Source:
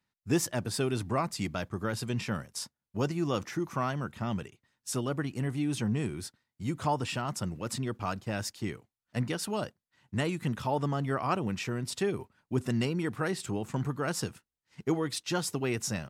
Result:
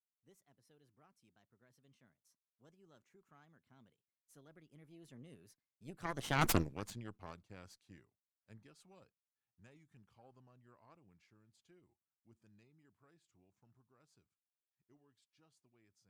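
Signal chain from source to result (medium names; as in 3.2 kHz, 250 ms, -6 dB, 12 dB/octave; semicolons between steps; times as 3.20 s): Doppler pass-by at 6.48 s, 41 m/s, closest 2.7 m; Chebyshev shaper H 8 -7 dB, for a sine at -18.5 dBFS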